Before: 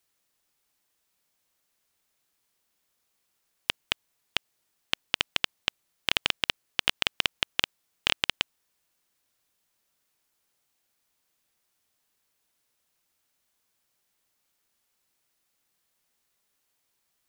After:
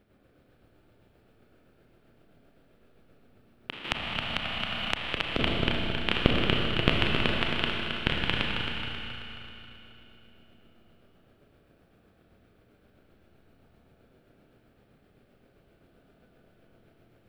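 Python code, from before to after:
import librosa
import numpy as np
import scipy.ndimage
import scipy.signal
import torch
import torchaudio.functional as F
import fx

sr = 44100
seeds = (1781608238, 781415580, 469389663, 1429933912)

p1 = fx.peak_eq(x, sr, hz=9200.0, db=12.0, octaves=1.1)
p2 = fx.dmg_noise_colour(p1, sr, seeds[0], colour='blue', level_db=-61.0)
p3 = p2 * (1.0 - 0.59 / 2.0 + 0.59 / 2.0 * np.cos(2.0 * np.pi * 7.7 * (np.arange(len(p2)) / sr)))
p4 = fx.sample_hold(p3, sr, seeds[1], rate_hz=1000.0, jitter_pct=0)
p5 = p3 + F.gain(torch.from_numpy(p4), -6.0).numpy()
p6 = fx.air_absorb(p5, sr, metres=480.0)
p7 = p6 + fx.echo_feedback(p6, sr, ms=269, feedback_pct=50, wet_db=-7, dry=0)
p8 = fx.rev_schroeder(p7, sr, rt60_s=3.0, comb_ms=26, drr_db=-1.0)
p9 = fx.band_squash(p8, sr, depth_pct=100, at=(3.84, 5.39))
y = F.gain(torch.from_numpy(p9), 4.0).numpy()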